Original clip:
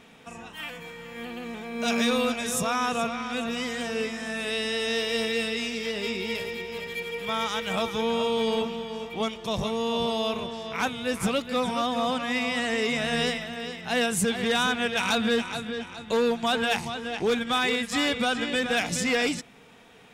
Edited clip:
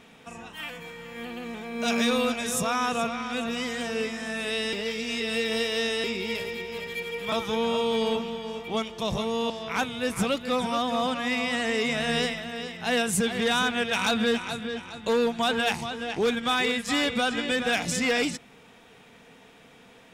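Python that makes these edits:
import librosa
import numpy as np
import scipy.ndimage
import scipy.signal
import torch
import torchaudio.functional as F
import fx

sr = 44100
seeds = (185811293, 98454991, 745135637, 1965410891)

y = fx.edit(x, sr, fx.reverse_span(start_s=4.73, length_s=1.31),
    fx.cut(start_s=7.32, length_s=0.46),
    fx.cut(start_s=9.96, length_s=0.58), tone=tone)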